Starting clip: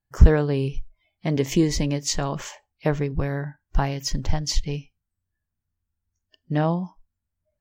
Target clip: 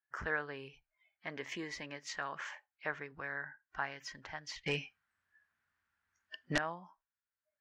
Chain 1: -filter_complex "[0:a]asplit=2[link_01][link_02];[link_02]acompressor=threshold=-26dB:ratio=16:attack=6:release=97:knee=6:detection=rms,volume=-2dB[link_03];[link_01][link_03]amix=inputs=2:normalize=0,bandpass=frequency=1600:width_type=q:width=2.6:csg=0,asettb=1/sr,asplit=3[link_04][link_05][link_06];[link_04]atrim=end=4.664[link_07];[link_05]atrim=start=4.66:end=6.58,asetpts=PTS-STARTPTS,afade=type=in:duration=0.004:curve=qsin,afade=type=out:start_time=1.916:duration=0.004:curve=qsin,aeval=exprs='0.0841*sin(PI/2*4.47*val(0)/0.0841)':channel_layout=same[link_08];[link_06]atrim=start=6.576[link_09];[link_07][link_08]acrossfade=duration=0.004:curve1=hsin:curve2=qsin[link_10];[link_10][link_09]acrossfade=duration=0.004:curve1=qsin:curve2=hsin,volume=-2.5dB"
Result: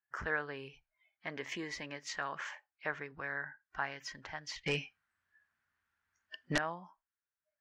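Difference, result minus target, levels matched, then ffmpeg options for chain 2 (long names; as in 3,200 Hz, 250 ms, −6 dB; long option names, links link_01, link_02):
downward compressor: peak gain reduction −7.5 dB
-filter_complex "[0:a]asplit=2[link_01][link_02];[link_02]acompressor=threshold=-34dB:ratio=16:attack=6:release=97:knee=6:detection=rms,volume=-2dB[link_03];[link_01][link_03]amix=inputs=2:normalize=0,bandpass=frequency=1600:width_type=q:width=2.6:csg=0,asettb=1/sr,asplit=3[link_04][link_05][link_06];[link_04]atrim=end=4.664[link_07];[link_05]atrim=start=4.66:end=6.58,asetpts=PTS-STARTPTS,afade=type=in:duration=0.004:curve=qsin,afade=type=out:start_time=1.916:duration=0.004:curve=qsin,aeval=exprs='0.0841*sin(PI/2*4.47*val(0)/0.0841)':channel_layout=same[link_08];[link_06]atrim=start=6.576[link_09];[link_07][link_08]acrossfade=duration=0.004:curve1=hsin:curve2=qsin[link_10];[link_10][link_09]acrossfade=duration=0.004:curve1=qsin:curve2=hsin,volume=-2.5dB"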